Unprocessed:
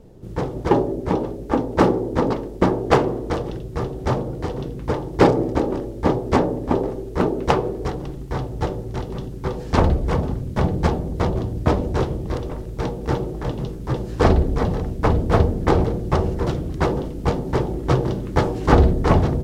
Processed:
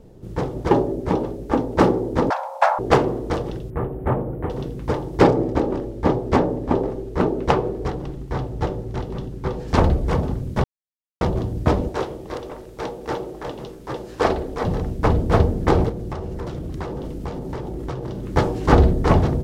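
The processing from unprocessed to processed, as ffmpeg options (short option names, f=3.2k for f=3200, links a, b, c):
-filter_complex "[0:a]asettb=1/sr,asplit=3[a][b][c];[a]atrim=end=2.304[d];[b]atrim=start=2.3:end=2.79,asetpts=PTS-STARTPTS,afade=t=in:d=0.004:c=qsin,afade=t=out:st=0.486:d=0.004:c=qsin,afreqshift=490[e];[c]atrim=start=2.786[f];[d][e]acrossfade=d=0.004:c1=hsin:c2=qsin[g];[g][f]acrossfade=d=0.004:c1=qsin:c2=hsin,asettb=1/sr,asplit=3[h][i][j];[h]atrim=end=3.704[k];[i]atrim=start=3.7:end=4.5,asetpts=PTS-STARTPTS,afade=t=in:d=0.004:c=qsin,afade=t=out:st=0.796:d=0.004:c=qsin,asuperstop=centerf=5300:order=4:qfactor=0.53[l];[j]atrim=start=4.496[m];[k][l]acrossfade=d=0.004:c1=hsin:c2=qsin[n];[n][m]acrossfade=d=0.004:c1=qsin:c2=hsin,asettb=1/sr,asplit=3[o][p][q];[o]atrim=end=5.224[r];[p]atrim=start=5.22:end=9.68,asetpts=PTS-STARTPTS,afade=t=in:d=0.004:c=qsin,afade=t=out:st=4.456:d=0.004:c=qsin,highshelf=f=5.6k:g=-6.5[s];[q]atrim=start=9.676[t];[r][s]acrossfade=d=0.004:c1=hsin:c2=qsin[u];[u][t]acrossfade=d=0.004:c1=qsin:c2=hsin,asettb=1/sr,asplit=3[v][w][x];[v]atrim=end=11.894[y];[w]atrim=start=11.89:end=14.65,asetpts=PTS-STARTPTS,afade=t=in:d=0.004:c=qsin,afade=t=out:st=2.756:d=0.004:c=qsin,bass=f=250:g=-14,treble=f=4k:g=-1[z];[x]atrim=start=14.646[aa];[y][z]acrossfade=d=0.004:c1=hsin:c2=qsin[ab];[ab][aa]acrossfade=d=0.004:c1=qsin:c2=hsin,asettb=1/sr,asplit=3[ac][ad][ae];[ac]atrim=end=15.894[af];[ad]atrim=start=15.89:end=18.32,asetpts=PTS-STARTPTS,afade=t=in:d=0.004:c=qsin,afade=t=out:st=2.426:d=0.004:c=qsin,acompressor=threshold=-25dB:ratio=6:attack=3.2:release=140:knee=1:detection=peak[ag];[ae]atrim=start=18.316[ah];[af][ag]acrossfade=d=0.004:c1=hsin:c2=qsin[ai];[ai][ah]acrossfade=d=0.004:c1=qsin:c2=hsin,asplit=3[aj][ak][al];[aj]atrim=end=10.64,asetpts=PTS-STARTPTS,afade=t=out:st=10.636:d=0.004:c=hsin[am];[ak]atrim=start=10.64:end=11.21,asetpts=PTS-STARTPTS,volume=0[an];[al]atrim=start=11.21,asetpts=PTS-STARTPTS,afade=t=in:d=0.004:c=hsin[ao];[am][an][ao]concat=n=3:v=0:a=1"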